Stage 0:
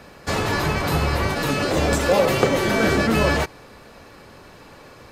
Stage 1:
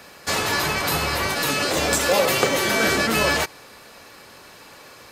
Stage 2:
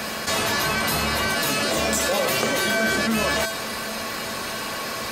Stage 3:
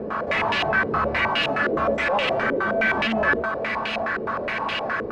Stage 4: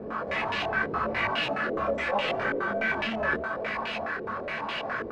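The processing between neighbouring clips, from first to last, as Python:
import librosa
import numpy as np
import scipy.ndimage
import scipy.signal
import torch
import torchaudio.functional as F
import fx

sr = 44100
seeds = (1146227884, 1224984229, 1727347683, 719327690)

y1 = fx.tilt_eq(x, sr, slope=2.5)
y2 = fx.comb_fb(y1, sr, f0_hz=220.0, decay_s=0.22, harmonics='odd', damping=0.0, mix_pct=80)
y2 = fx.env_flatten(y2, sr, amount_pct=70)
y2 = y2 * 10.0 ** (5.0 / 20.0)
y3 = np.clip(y2, -10.0 ** (-22.5 / 20.0), 10.0 ** (-22.5 / 20.0))
y3 = y3 + 10.0 ** (-14.5 / 20.0) * np.pad(y3, (int(256 * sr / 1000.0), 0))[:len(y3)]
y3 = fx.filter_held_lowpass(y3, sr, hz=9.6, low_hz=430.0, high_hz=2800.0)
y4 = fx.detune_double(y3, sr, cents=28)
y4 = y4 * 10.0 ** (-2.5 / 20.0)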